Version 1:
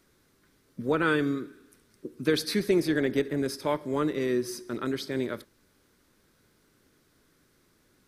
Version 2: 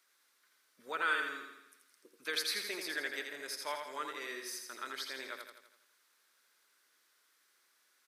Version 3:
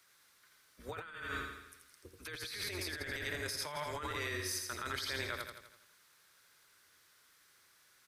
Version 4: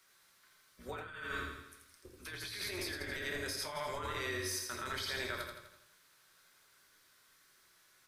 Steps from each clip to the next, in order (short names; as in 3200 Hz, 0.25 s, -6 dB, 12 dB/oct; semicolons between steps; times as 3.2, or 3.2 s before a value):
HPF 1100 Hz 12 dB/oct; on a send: feedback echo 83 ms, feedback 53%, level -5.5 dB; on the sum: gain -3.5 dB
octaver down 2 oct, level +3 dB; negative-ratio compressor -43 dBFS, ratio -1; gain +2 dB
shoebox room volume 200 m³, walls furnished, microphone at 1.1 m; gain -1.5 dB